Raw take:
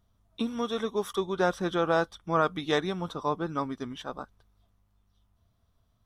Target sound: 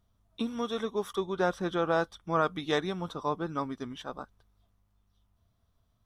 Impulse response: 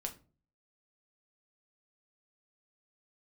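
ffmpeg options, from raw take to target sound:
-filter_complex "[0:a]asettb=1/sr,asplit=3[link_01][link_02][link_03];[link_01]atrim=end=0.854[link_04];[link_02]atrim=start=0.85:end=2,asetpts=PTS-STARTPTS,afade=type=in:duration=0.004:curve=qsin,afade=type=out:start_time=1.146:duration=0.004:curve=qsin,equalizer=frequency=12000:width_type=o:width=2.5:gain=-3[link_05];[link_03]atrim=start=1.996[link_06];[link_04][link_05]acrossfade=duration=0.004:curve1=hsin:curve2=qsin[link_07];[link_07][link_06]acrossfade=duration=0.004:curve1=qsin:curve2=hsin,volume=-2dB"

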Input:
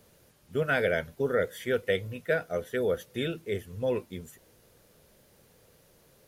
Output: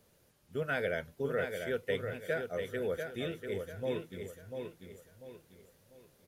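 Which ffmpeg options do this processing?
ffmpeg -i in.wav -af "aecho=1:1:693|1386|2079|2772:0.501|0.175|0.0614|0.0215,volume=-7dB" out.wav

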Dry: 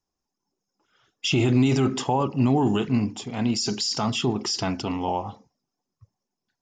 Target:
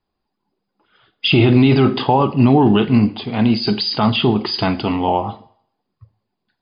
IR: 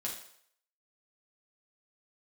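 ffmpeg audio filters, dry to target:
-filter_complex "[0:a]asplit=2[link_01][link_02];[1:a]atrim=start_sample=2205,highshelf=frequency=6900:gain=8.5[link_03];[link_02][link_03]afir=irnorm=-1:irlink=0,volume=-11.5dB[link_04];[link_01][link_04]amix=inputs=2:normalize=0,volume=8dB" -ar 11025 -c:a libmp3lame -b:a 40k

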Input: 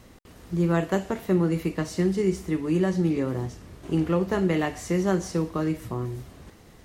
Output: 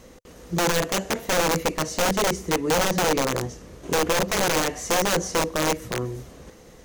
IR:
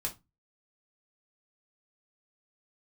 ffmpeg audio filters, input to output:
-af "aeval=exprs='(mod(9.44*val(0)+1,2)-1)/9.44':channel_layout=same,equalizer=frequency=100:width_type=o:width=0.33:gain=-11,equalizer=frequency=500:width_type=o:width=0.33:gain=9,equalizer=frequency=6300:width_type=o:width=0.33:gain=7,volume=2dB"

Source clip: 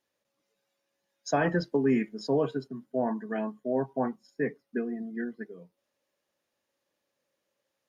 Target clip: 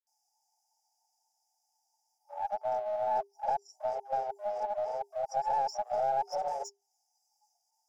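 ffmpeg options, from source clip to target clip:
ffmpeg -i in.wav -filter_complex "[0:a]areverse,asplit=2[link_01][link_02];[link_02]highpass=frequency=720:poles=1,volume=26dB,asoftclip=type=tanh:threshold=-13.5dB[link_03];[link_01][link_03]amix=inputs=2:normalize=0,lowpass=frequency=1900:poles=1,volume=-6dB,acrossover=split=440|1700[link_04][link_05][link_06];[link_04]acompressor=threshold=-31dB:ratio=4[link_07];[link_05]acompressor=threshold=-29dB:ratio=4[link_08];[link_06]acompressor=threshold=-45dB:ratio=4[link_09];[link_07][link_08][link_09]amix=inputs=3:normalize=0,afftfilt=real='re*(1-between(b*sr/4096,500,4300))':imag='im*(1-between(b*sr/4096,500,4300))':win_size=4096:overlap=0.75,acrossover=split=380|810[link_10][link_11][link_12];[link_10]aeval=exprs='sgn(val(0))*max(abs(val(0))-0.00282,0)':channel_layout=same[link_13];[link_13][link_11][link_12]amix=inputs=3:normalize=0,afreqshift=400,asplit=2[link_14][link_15];[link_15]aeval=exprs='clip(val(0),-1,0.0211)':channel_layout=same,volume=-10dB[link_16];[link_14][link_16]amix=inputs=2:normalize=0,volume=-3dB" out.wav

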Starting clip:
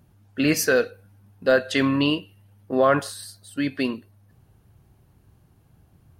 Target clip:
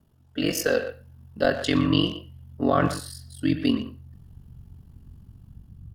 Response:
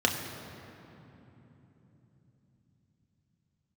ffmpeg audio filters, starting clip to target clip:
-filter_complex "[0:a]asubboost=boost=11:cutoff=150,acrossover=split=280[link_01][link_02];[link_02]dynaudnorm=framelen=180:gausssize=7:maxgain=3.5dB[link_03];[link_01][link_03]amix=inputs=2:normalize=0,aeval=exprs='val(0)*sin(2*PI*22*n/s)':channel_layout=same,asplit=2[link_04][link_05];[1:a]atrim=start_sample=2205,atrim=end_sample=4410,asetrate=38808,aresample=44100[link_06];[link_05][link_06]afir=irnorm=-1:irlink=0,volume=-20dB[link_07];[link_04][link_07]amix=inputs=2:normalize=0,asetrate=45938,aresample=44100,asplit=2[link_08][link_09];[link_09]adelay=120,highpass=300,lowpass=3400,asoftclip=type=hard:threshold=-12.5dB,volume=-10dB[link_10];[link_08][link_10]amix=inputs=2:normalize=0,volume=-3.5dB"

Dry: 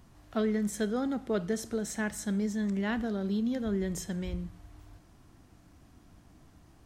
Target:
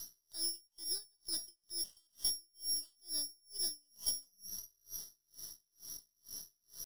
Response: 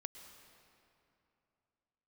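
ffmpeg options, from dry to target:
-filter_complex "[0:a]lowpass=frequency=3200:width_type=q:width=0.5098,lowpass=frequency=3200:width_type=q:width=0.6013,lowpass=frequency=3200:width_type=q:width=0.9,lowpass=frequency=3200:width_type=q:width=2.563,afreqshift=-3800,equalizer=frequency=400:width=3.2:gain=8,acrossover=split=270[link_01][link_02];[link_02]acompressor=threshold=-43dB:ratio=20[link_03];[link_01][link_03]amix=inputs=2:normalize=0,asetrate=68011,aresample=44100,atempo=0.64842,aeval=exprs='max(val(0),0)':channel_layout=same,asuperstop=centerf=2400:order=4:qfactor=2.9,aemphasis=mode=production:type=75kf,aeval=exprs='val(0)*pow(10,-39*(0.5-0.5*cos(2*PI*2.2*n/s))/20)':channel_layout=same,volume=6.5dB"

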